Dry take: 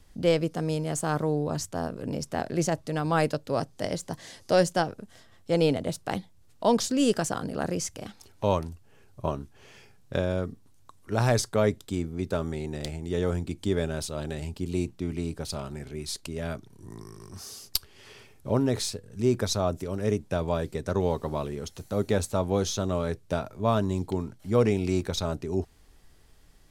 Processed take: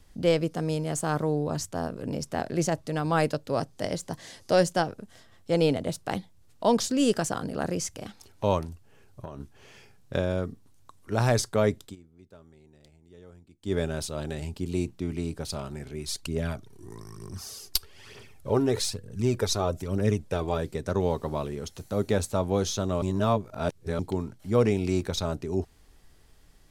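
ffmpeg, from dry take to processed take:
ffmpeg -i in.wav -filter_complex "[0:a]asettb=1/sr,asplit=3[link_01][link_02][link_03];[link_01]atrim=end=8.654[link_04];[link_02]atrim=start=8.65:end=9.4,asetpts=PTS-STARTPTS,afade=type=in:duration=0.004:curve=qsin,afade=type=out:start_time=0.746:duration=0.004:curve=qsin,acompressor=threshold=-33dB:ratio=16:attack=3.2:release=140:knee=1:detection=peak[link_05];[link_03]atrim=start=9.396[link_06];[link_04][link_05]acrossfade=duration=0.004:curve1=hsin:curve2=qsin[link_07];[link_07][link_06]acrossfade=duration=0.004:curve1=qsin:curve2=hsin,asplit=3[link_08][link_09][link_10];[link_08]afade=type=out:start_time=16.05:duration=0.02[link_11];[link_09]aphaser=in_gain=1:out_gain=1:delay=3:decay=0.5:speed=1.1:type=triangular,afade=type=in:start_time=16.05:duration=0.02,afade=type=out:start_time=20.57:duration=0.02[link_12];[link_10]afade=type=in:start_time=20.57:duration=0.02[link_13];[link_11][link_12][link_13]amix=inputs=3:normalize=0,asplit=5[link_14][link_15][link_16][link_17][link_18];[link_14]atrim=end=11.96,asetpts=PTS-STARTPTS,afade=type=out:start_time=11.84:duration=0.12:silence=0.0707946[link_19];[link_15]atrim=start=11.96:end=13.62,asetpts=PTS-STARTPTS,volume=-23dB[link_20];[link_16]atrim=start=13.62:end=23.022,asetpts=PTS-STARTPTS,afade=type=in:duration=0.12:silence=0.0707946[link_21];[link_17]atrim=start=23.018:end=23.992,asetpts=PTS-STARTPTS,areverse[link_22];[link_18]atrim=start=23.988[link_23];[link_19][link_20][link_21]concat=n=3:v=0:a=1[link_24];[link_24][link_22]acrossfade=duration=0.004:curve1=hsin:curve2=hsin[link_25];[link_25][link_23]acrossfade=duration=0.004:curve1=hsin:curve2=hsin" out.wav

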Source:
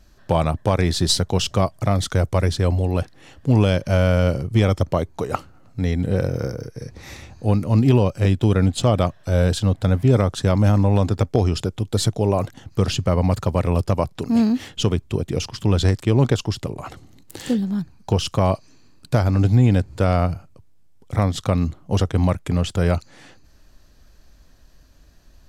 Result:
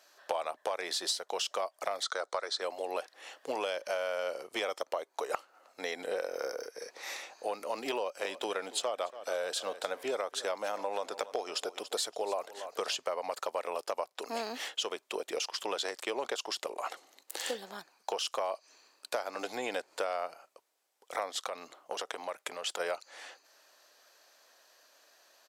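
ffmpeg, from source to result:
ffmpeg -i in.wav -filter_complex "[0:a]asettb=1/sr,asplit=3[link_01][link_02][link_03];[link_01]atrim=end=2.034[link_04];[link_02]atrim=start=2.03:end=2.62,asetpts=PTS-STARTPTS,afade=type=in:duration=0.004:curve=qsin,afade=type=out:start_time=0.586:duration=0.004:curve=qsin,highpass=270,equalizer=frequency=1300:width_type=q:width=4:gain=8,equalizer=frequency=2700:width_type=q:width=4:gain=-9,equalizer=frequency=4000:width_type=q:width=4:gain=9,lowpass=frequency=8600:width=0.5412,lowpass=frequency=8600:width=1.3066[link_05];[link_03]atrim=start=2.616[link_06];[link_04][link_05]acrossfade=duration=0.004:curve1=hsin:curve2=qsin[link_07];[link_07][link_06]acrossfade=duration=0.004:curve1=qsin:curve2=hsin,asplit=3[link_08][link_09][link_10];[link_08]afade=type=out:start_time=8.19:duration=0.02[link_11];[link_09]aecho=1:1:283|566|849:0.119|0.0487|0.02,afade=type=in:start_time=8.19:duration=0.02,afade=type=out:start_time=12.95:duration=0.02[link_12];[link_10]afade=type=in:start_time=12.95:duration=0.02[link_13];[link_11][link_12][link_13]amix=inputs=3:normalize=0,asplit=3[link_14][link_15][link_16];[link_14]afade=type=out:start_time=21.36:duration=0.02[link_17];[link_15]acompressor=threshold=-23dB:ratio=6:attack=3.2:release=140:knee=1:detection=peak,afade=type=in:start_time=21.36:duration=0.02,afade=type=out:start_time=22.79:duration=0.02[link_18];[link_16]afade=type=in:start_time=22.79:duration=0.02[link_19];[link_17][link_18][link_19]amix=inputs=3:normalize=0,highpass=frequency=510:width=0.5412,highpass=frequency=510:width=1.3066,acompressor=threshold=-31dB:ratio=6" out.wav

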